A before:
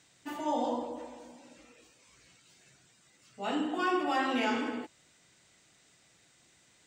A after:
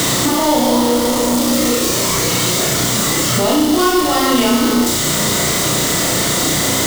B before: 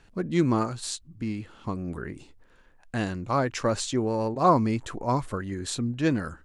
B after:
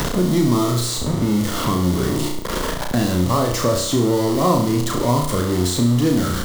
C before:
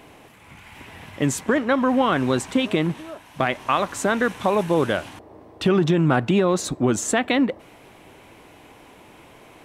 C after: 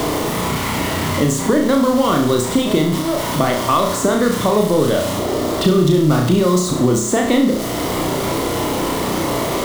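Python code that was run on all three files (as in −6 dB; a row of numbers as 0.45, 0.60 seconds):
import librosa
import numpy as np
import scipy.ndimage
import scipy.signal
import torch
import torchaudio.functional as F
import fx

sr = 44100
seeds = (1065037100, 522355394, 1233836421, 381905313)

y = x + 0.5 * 10.0 ** (-23.0 / 20.0) * np.sign(x)
y = fx.graphic_eq_31(y, sr, hz=(800, 1600, 2500), db=(-7, -11, -12))
y = fx.room_flutter(y, sr, wall_m=5.7, rt60_s=0.52)
y = fx.band_squash(y, sr, depth_pct=70)
y = librosa.util.normalize(y) * 10.0 ** (-2 / 20.0)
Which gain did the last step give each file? +10.0, +2.5, +2.0 decibels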